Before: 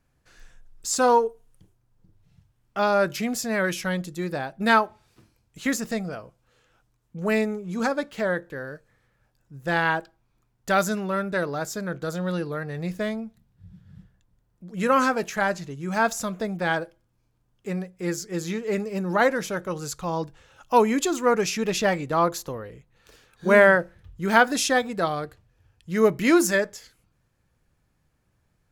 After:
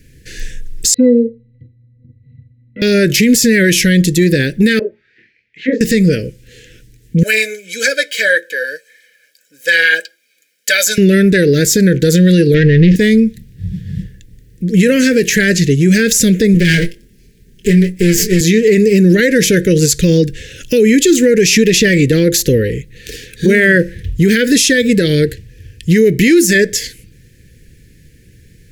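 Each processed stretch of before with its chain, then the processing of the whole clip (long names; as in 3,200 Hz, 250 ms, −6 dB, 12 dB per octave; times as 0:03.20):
0:00.94–0:02.82: Butterworth low-pass 3,700 Hz 48 dB per octave + parametric band 230 Hz +9.5 dB 0.25 octaves + resonances in every octave B, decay 0.13 s
0:04.79–0:05.81: double-tracking delay 27 ms −2.5 dB + envelope filter 500–2,200 Hz, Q 3.5, down, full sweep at −21.5 dBFS + high-frequency loss of the air 190 metres
0:07.23–0:10.98: high-pass filter 490 Hz 24 dB per octave + comb filter 1.3 ms, depth 85% + flanger 1.7 Hz, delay 2.8 ms, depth 4.3 ms, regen +49%
0:12.54–0:12.96: leveller curve on the samples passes 3 + high-frequency loss of the air 220 metres
0:16.54–0:18.41: lower of the sound and its delayed copy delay 5 ms + double-tracking delay 23 ms −8 dB
whole clip: elliptic band-stop filter 470–1,800 Hz, stop band 40 dB; downward compressor 2 to 1, threshold −31 dBFS; boost into a limiter +27 dB; level −1 dB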